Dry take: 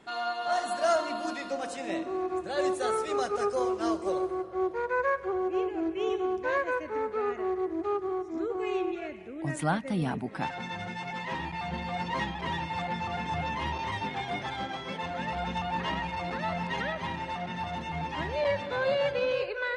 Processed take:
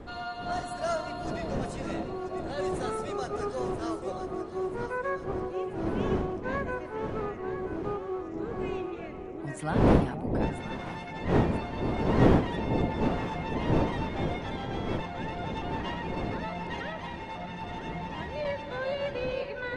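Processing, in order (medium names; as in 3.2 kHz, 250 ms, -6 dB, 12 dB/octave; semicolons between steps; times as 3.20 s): wind noise 400 Hz -28 dBFS; echo whose repeats swap between lows and highs 492 ms, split 830 Hz, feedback 72%, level -8 dB; trim -5 dB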